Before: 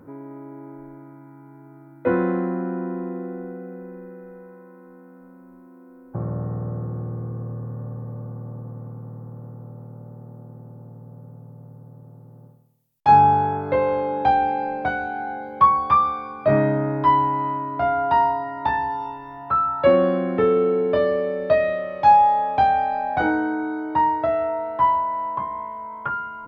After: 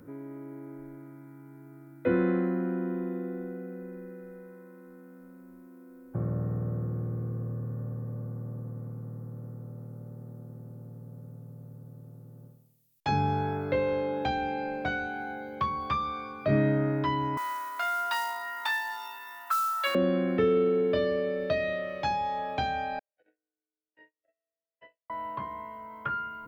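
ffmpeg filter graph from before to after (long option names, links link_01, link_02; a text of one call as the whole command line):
ffmpeg -i in.wav -filter_complex "[0:a]asettb=1/sr,asplit=3[link_01][link_02][link_03];[link_01]atrim=end=17.374[link_04];[link_02]atrim=start=17.37:end=19.95,asetpts=PTS-STARTPTS,afade=type=in:duration=0.004:curve=qsin,afade=type=out:start_time=2.576:duration=0.004:curve=qsin,highpass=frequency=1200:width_type=q:width=2.1,aemphasis=mode=production:type=75fm,acrusher=bits=8:mode=log:mix=0:aa=0.000001[link_05];[link_03]atrim=start=19.946[link_06];[link_04][link_05]acrossfade=duration=0.004:curve1=hsin:curve2=qsin[link_07];[link_07][link_06]acrossfade=duration=0.004:curve1=qsin:curve2=hsin,asettb=1/sr,asplit=3[link_08][link_09][link_10];[link_08]atrim=end=22.994[link_11];[link_09]atrim=start=22.99:end=25.1,asetpts=PTS-STARTPTS,afade=type=in:duration=0.004:curve=qsin,afade=type=out:start_time=2.106:duration=0.004:curve=qsin,agate=range=-50dB:threshold=-16dB:ratio=16:release=100:detection=peak,asplit=3[link_12][link_13][link_14];[link_12]bandpass=frequency=530:width_type=q:width=8,volume=0dB[link_15];[link_13]bandpass=frequency=1840:width_type=q:width=8,volume=-6dB[link_16];[link_14]bandpass=frequency=2480:width_type=q:width=8,volume=-9dB[link_17];[link_15][link_16][link_17]amix=inputs=3:normalize=0[link_18];[link_10]atrim=start=25.096[link_19];[link_11][link_18]acrossfade=duration=0.004:curve1=hsin:curve2=qsin[link_20];[link_20][link_19]acrossfade=duration=0.004:curve1=qsin:curve2=hsin,equalizer=frequency=890:width_type=o:width=0.87:gain=-9.5,acrossover=split=450|3000[link_21][link_22][link_23];[link_22]acompressor=threshold=-27dB:ratio=6[link_24];[link_21][link_24][link_23]amix=inputs=3:normalize=0,highshelf=frequency=2300:gain=7.5,volume=-3dB" out.wav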